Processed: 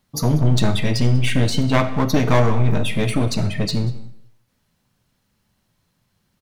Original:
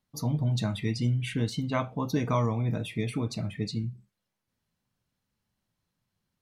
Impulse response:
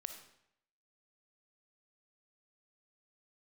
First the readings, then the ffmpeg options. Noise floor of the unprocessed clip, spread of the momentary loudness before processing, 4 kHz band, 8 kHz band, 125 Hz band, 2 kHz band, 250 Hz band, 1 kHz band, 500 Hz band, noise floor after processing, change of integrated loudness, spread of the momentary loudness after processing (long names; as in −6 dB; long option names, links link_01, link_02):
−84 dBFS, 6 LU, +13.0 dB, +13.0 dB, +10.0 dB, +13.0 dB, +10.0 dB, +10.0 dB, +11.5 dB, −69 dBFS, +10.5 dB, 5 LU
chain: -filter_complex "[0:a]aeval=exprs='clip(val(0),-1,0.0211)':channel_layout=same,aecho=1:1:191:0.0841,asplit=2[link_01][link_02];[1:a]atrim=start_sample=2205[link_03];[link_02][link_03]afir=irnorm=-1:irlink=0,volume=4.5dB[link_04];[link_01][link_04]amix=inputs=2:normalize=0,volume=7dB"